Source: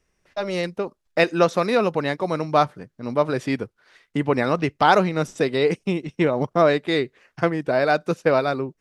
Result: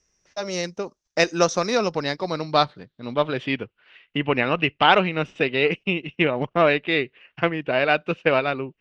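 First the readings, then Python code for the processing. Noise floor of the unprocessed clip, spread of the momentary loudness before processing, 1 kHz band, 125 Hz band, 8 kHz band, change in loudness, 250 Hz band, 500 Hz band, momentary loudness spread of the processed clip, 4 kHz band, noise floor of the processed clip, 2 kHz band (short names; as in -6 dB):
-74 dBFS, 9 LU, -1.0 dB, -2.5 dB, +7.0 dB, -0.5 dB, -2.5 dB, -2.0 dB, 11 LU, +5.0 dB, -78 dBFS, +3.0 dB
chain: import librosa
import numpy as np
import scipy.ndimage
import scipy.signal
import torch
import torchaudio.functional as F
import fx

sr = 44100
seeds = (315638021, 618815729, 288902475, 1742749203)

y = fx.cheby_harmonics(x, sr, harmonics=(7,), levels_db=(-31,), full_scale_db=-3.0)
y = fx.filter_sweep_lowpass(y, sr, from_hz=6000.0, to_hz=2800.0, start_s=1.62, end_s=3.69, q=6.5)
y = y * librosa.db_to_amplitude(-1.5)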